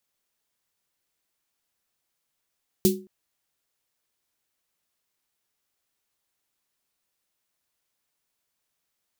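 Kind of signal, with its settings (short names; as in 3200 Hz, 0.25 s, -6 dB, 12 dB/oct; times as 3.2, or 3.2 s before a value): snare drum length 0.22 s, tones 200 Hz, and 370 Hz, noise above 3200 Hz, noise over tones -4 dB, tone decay 0.35 s, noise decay 0.19 s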